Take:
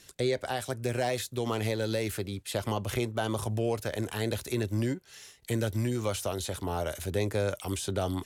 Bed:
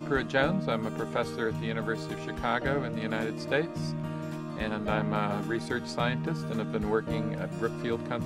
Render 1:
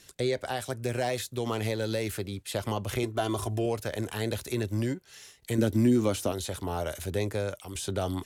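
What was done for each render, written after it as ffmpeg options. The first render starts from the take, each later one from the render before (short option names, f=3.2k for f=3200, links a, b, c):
-filter_complex "[0:a]asettb=1/sr,asplit=3[a][b][c];[a]atrim=end=3.034[d];[b]atrim=start=3.03:end=3.66,asetpts=PTS-STARTPTS,afade=t=in:d=0.004:c=qsin,afade=t=out:st=0.626:d=0.004:c=qsin,aecho=1:1:2.9:0.66,atrim=end_sample=27783[e];[c]atrim=start=3.656[f];[d][e]acrossfade=d=0.004:c1=hsin:c2=qsin[g];[g][f]acrossfade=d=0.004:c1=qsin:c2=hsin,asettb=1/sr,asplit=3[h][i][j];[h]atrim=end=5.584[k];[i]atrim=start=5.58:end=6.32,asetpts=PTS-STARTPTS,afade=t=in:d=0.004:c=qsin,afade=t=out:st=0.736:d=0.004:c=qsin,equalizer=f=270:w=1.3:g=12.5[l];[j]atrim=start=6.316[m];[k][l]acrossfade=d=0.004:c1=hsin:c2=qsin[n];[n][m]acrossfade=d=0.004:c1=qsin:c2=hsin,asplit=2[o][p];[o]atrim=end=7.75,asetpts=PTS-STARTPTS,afade=t=out:st=7.05:d=0.7:c=qsin:silence=0.334965[q];[p]atrim=start=7.75,asetpts=PTS-STARTPTS,afade=t=in:d=0.004:c=hsin:silence=0.334965[r];[q][r]concat=n=2:v=0:a=1"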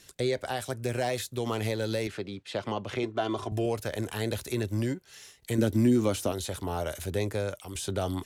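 -filter_complex "[0:a]asettb=1/sr,asplit=3[a][b][c];[a]atrim=end=2.074[d];[b]atrim=start=2.07:end=3.52,asetpts=PTS-STARTPTS,afade=t=in:d=0.004:c=qsin,afade=t=out:st=1.446:d=0.004:c=qsin,highpass=150,lowpass=4.3k[e];[c]atrim=start=3.516[f];[d][e]acrossfade=d=0.004:c1=hsin:c2=qsin[g];[g][f]acrossfade=d=0.004:c1=qsin:c2=hsin"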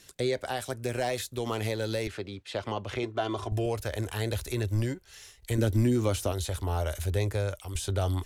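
-af "asubboost=boost=11:cutoff=56"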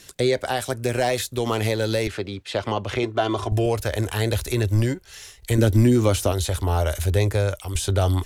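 -af "volume=8dB"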